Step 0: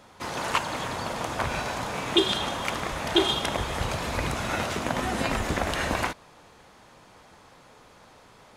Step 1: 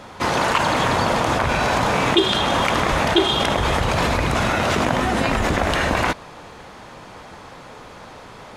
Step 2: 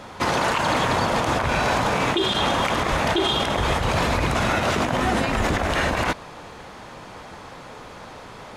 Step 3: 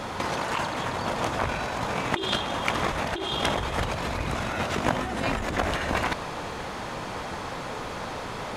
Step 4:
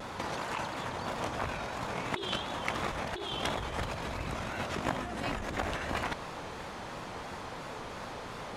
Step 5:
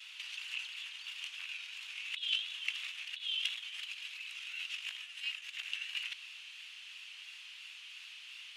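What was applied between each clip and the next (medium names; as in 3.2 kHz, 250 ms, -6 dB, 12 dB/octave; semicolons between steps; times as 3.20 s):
treble shelf 5.8 kHz -8 dB; in parallel at +1 dB: compressor with a negative ratio -32 dBFS, ratio -0.5; on the sum: trim +5 dB
peak limiter -12 dBFS, peak gain reduction 9.5 dB
compressor with a negative ratio -26 dBFS, ratio -0.5
vibrato 2.9 Hz 90 cents; trim -7.5 dB
ladder high-pass 2.6 kHz, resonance 75%; trim +5 dB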